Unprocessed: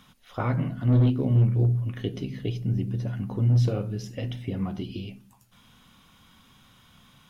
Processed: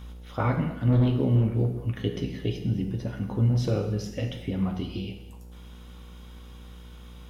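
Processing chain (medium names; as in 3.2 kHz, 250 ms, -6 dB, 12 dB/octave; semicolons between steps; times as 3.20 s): mains buzz 60 Hz, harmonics 15, -44 dBFS -9 dB/octave; gated-style reverb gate 330 ms falling, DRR 5 dB; trim +1 dB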